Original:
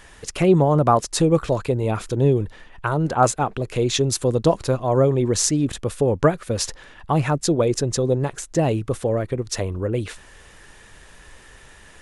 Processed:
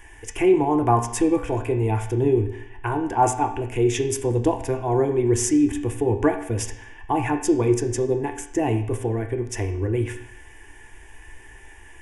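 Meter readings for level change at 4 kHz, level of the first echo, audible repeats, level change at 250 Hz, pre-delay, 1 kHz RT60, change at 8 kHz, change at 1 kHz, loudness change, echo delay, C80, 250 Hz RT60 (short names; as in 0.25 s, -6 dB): -9.5 dB, none, none, +0.5 dB, 3 ms, 0.70 s, -4.0 dB, -0.5 dB, -2.0 dB, none, 11.5 dB, 0.70 s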